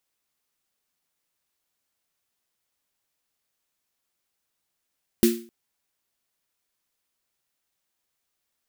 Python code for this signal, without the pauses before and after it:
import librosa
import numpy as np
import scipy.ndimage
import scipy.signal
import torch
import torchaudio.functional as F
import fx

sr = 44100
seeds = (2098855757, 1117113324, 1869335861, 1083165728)

y = fx.drum_snare(sr, seeds[0], length_s=0.26, hz=230.0, second_hz=350.0, noise_db=-8.5, noise_from_hz=1600.0, decay_s=0.39, noise_decay_s=0.35)